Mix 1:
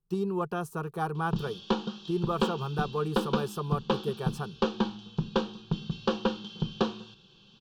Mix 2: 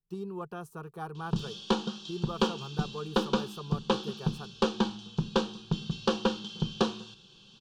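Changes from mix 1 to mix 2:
speech -8.0 dB; background: remove distance through air 120 m

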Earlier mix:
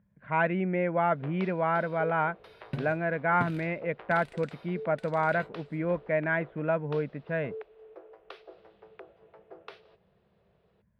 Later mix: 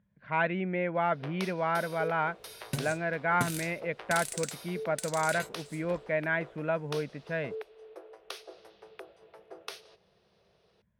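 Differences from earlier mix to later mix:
speech -4.0 dB; master: remove distance through air 410 m

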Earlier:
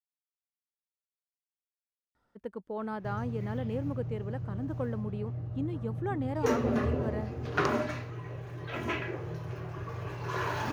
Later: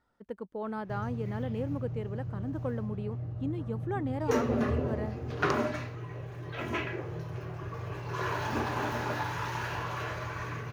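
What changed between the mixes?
speech: entry -2.15 s; background: entry -2.15 s

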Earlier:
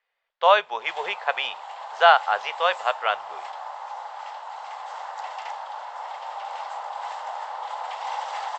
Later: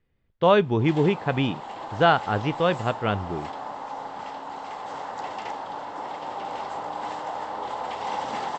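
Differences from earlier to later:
speech -5.0 dB; master: remove inverse Chebyshev high-pass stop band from 320 Hz, stop band 40 dB

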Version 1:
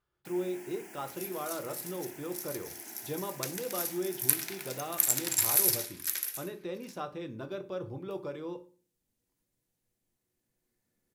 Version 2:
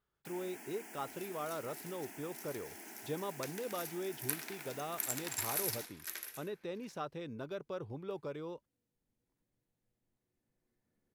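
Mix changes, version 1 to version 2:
second sound: add treble shelf 3 kHz -12 dB; reverb: off

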